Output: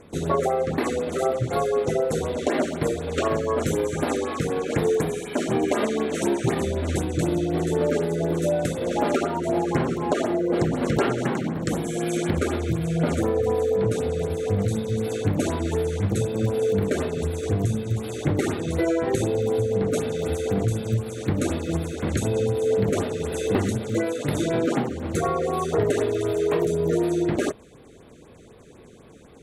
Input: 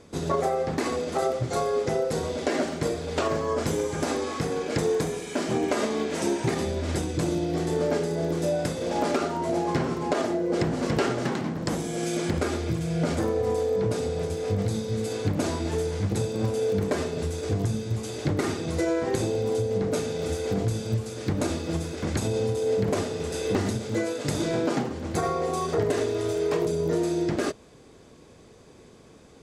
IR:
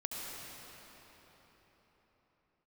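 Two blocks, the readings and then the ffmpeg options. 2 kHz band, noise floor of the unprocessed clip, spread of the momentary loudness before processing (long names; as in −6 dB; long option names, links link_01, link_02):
+1.5 dB, −51 dBFS, 4 LU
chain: -af "equalizer=frequency=4900:width_type=o:width=0.23:gain=-13.5,afftfilt=real='re*(1-between(b*sr/1024,810*pow(7900/810,0.5+0.5*sin(2*PI*4*pts/sr))/1.41,810*pow(7900/810,0.5+0.5*sin(2*PI*4*pts/sr))*1.41))':imag='im*(1-between(b*sr/1024,810*pow(7900/810,0.5+0.5*sin(2*PI*4*pts/sr))/1.41,810*pow(7900/810,0.5+0.5*sin(2*PI*4*pts/sr))*1.41))':win_size=1024:overlap=0.75,volume=3dB"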